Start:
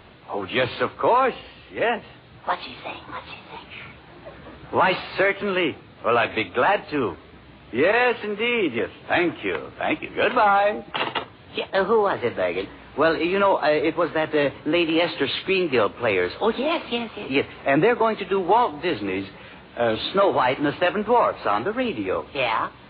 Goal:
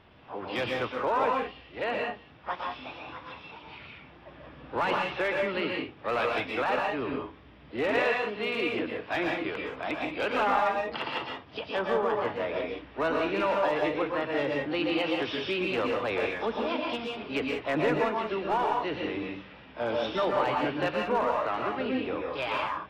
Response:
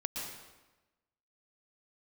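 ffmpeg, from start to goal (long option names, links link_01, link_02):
-filter_complex "[0:a]aresample=8000,aresample=44100,asplit=2[link_01][link_02];[link_02]asetrate=66075,aresample=44100,atempo=0.66742,volume=-13dB[link_03];[link_01][link_03]amix=inputs=2:normalize=0,aeval=exprs='clip(val(0),-1,0.224)':channel_layout=same[link_04];[1:a]atrim=start_sample=2205,afade=type=out:start_time=0.25:duration=0.01,atrim=end_sample=11466[link_05];[link_04][link_05]afir=irnorm=-1:irlink=0,volume=-8.5dB"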